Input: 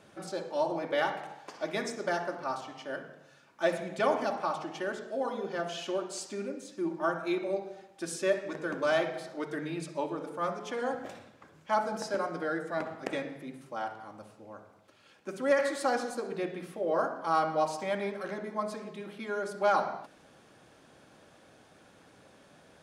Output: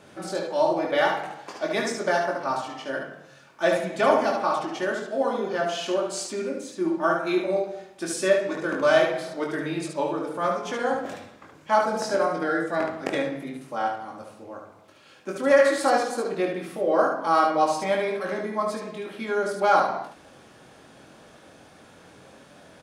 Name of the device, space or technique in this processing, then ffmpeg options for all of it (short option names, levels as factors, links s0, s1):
slapback doubling: -filter_complex "[0:a]asplit=3[s0][s1][s2];[s1]adelay=22,volume=0.596[s3];[s2]adelay=73,volume=0.596[s4];[s0][s3][s4]amix=inputs=3:normalize=0,volume=1.88"